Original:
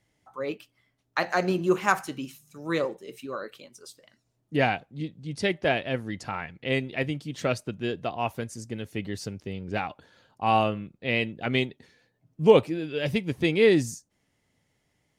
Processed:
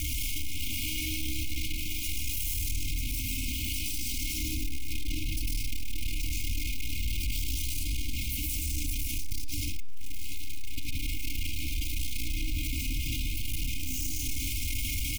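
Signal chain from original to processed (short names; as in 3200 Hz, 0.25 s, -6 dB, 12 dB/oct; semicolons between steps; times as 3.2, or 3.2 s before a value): infinite clipping; band-limited delay 1.179 s, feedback 64%, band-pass 670 Hz, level -5.5 dB; ring modulator 190 Hz; graphic EQ 125/250/500/1000/2000/4000/8000 Hz -8/-10/-5/-8/-6/-9/-6 dB; reverb RT60 4.4 s, pre-delay 80 ms, DRR -7.5 dB; sample leveller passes 5; brick-wall FIR band-stop 300–2100 Hz; comb 2.8 ms, depth 98%; de-hum 277.1 Hz, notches 21; limiter -23.5 dBFS, peak gain reduction 18 dB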